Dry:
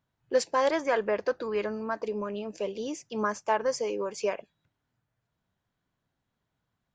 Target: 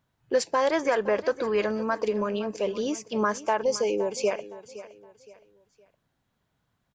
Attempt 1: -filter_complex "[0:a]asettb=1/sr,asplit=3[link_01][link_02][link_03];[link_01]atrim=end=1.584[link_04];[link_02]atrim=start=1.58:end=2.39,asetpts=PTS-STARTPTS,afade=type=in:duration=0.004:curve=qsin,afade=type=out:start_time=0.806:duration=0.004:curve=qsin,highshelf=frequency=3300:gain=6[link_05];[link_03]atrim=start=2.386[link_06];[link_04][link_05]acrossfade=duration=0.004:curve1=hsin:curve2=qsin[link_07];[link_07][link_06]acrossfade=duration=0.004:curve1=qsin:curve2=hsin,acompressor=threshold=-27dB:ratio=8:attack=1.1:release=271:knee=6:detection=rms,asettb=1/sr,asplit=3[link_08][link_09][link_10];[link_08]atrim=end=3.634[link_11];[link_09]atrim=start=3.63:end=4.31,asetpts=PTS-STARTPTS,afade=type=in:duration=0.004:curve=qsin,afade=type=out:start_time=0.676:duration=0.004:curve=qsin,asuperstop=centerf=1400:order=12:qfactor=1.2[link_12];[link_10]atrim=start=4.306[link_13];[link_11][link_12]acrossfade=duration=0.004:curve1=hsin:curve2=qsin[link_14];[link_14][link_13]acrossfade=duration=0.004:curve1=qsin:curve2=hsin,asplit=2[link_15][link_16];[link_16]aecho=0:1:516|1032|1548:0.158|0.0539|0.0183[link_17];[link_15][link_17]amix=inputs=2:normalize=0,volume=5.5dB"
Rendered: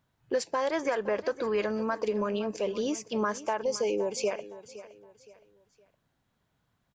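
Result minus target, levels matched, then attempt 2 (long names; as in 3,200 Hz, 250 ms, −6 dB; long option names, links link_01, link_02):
downward compressor: peak gain reduction +5.5 dB
-filter_complex "[0:a]asettb=1/sr,asplit=3[link_01][link_02][link_03];[link_01]atrim=end=1.584[link_04];[link_02]atrim=start=1.58:end=2.39,asetpts=PTS-STARTPTS,afade=type=in:duration=0.004:curve=qsin,afade=type=out:start_time=0.806:duration=0.004:curve=qsin,highshelf=frequency=3300:gain=6[link_05];[link_03]atrim=start=2.386[link_06];[link_04][link_05]acrossfade=duration=0.004:curve1=hsin:curve2=qsin[link_07];[link_07][link_06]acrossfade=duration=0.004:curve1=qsin:curve2=hsin,acompressor=threshold=-20.5dB:ratio=8:attack=1.1:release=271:knee=6:detection=rms,asettb=1/sr,asplit=3[link_08][link_09][link_10];[link_08]atrim=end=3.634[link_11];[link_09]atrim=start=3.63:end=4.31,asetpts=PTS-STARTPTS,afade=type=in:duration=0.004:curve=qsin,afade=type=out:start_time=0.676:duration=0.004:curve=qsin,asuperstop=centerf=1400:order=12:qfactor=1.2[link_12];[link_10]atrim=start=4.306[link_13];[link_11][link_12]acrossfade=duration=0.004:curve1=hsin:curve2=qsin[link_14];[link_14][link_13]acrossfade=duration=0.004:curve1=qsin:curve2=hsin,asplit=2[link_15][link_16];[link_16]aecho=0:1:516|1032|1548:0.158|0.0539|0.0183[link_17];[link_15][link_17]amix=inputs=2:normalize=0,volume=5.5dB"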